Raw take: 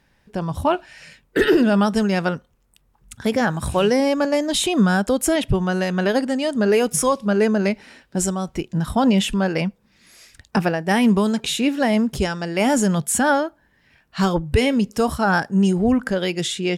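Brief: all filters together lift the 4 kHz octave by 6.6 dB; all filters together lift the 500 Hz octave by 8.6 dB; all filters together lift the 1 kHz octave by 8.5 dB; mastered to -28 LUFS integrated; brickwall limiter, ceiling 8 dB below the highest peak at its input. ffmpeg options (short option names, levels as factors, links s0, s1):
-af "equalizer=f=500:t=o:g=8.5,equalizer=f=1000:t=o:g=7.5,equalizer=f=4000:t=o:g=8,volume=0.282,alimiter=limit=0.126:level=0:latency=1"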